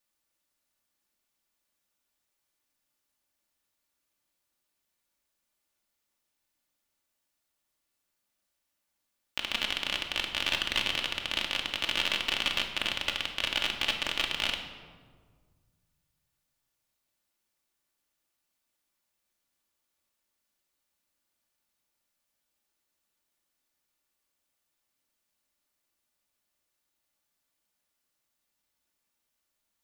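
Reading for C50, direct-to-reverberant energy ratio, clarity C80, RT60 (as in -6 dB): 7.0 dB, 1.5 dB, 9.0 dB, 1.7 s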